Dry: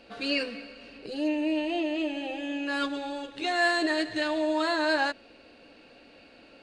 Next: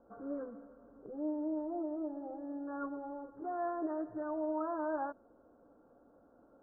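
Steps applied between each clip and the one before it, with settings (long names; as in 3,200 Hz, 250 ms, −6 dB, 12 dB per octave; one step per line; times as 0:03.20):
Butterworth low-pass 1,400 Hz 72 dB per octave
level −8.5 dB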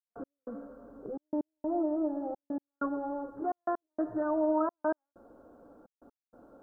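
gate pattern "..x...xxxxxxxxx" 192 BPM −60 dB
level +8 dB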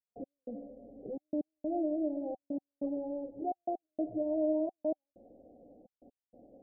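Chebyshev low-pass with heavy ripple 780 Hz, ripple 3 dB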